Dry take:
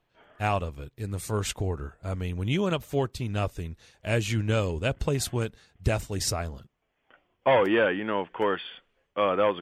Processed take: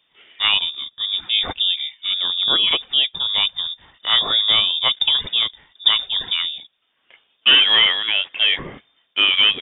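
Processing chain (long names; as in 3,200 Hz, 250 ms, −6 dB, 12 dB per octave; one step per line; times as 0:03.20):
voice inversion scrambler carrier 3,600 Hz
level +8 dB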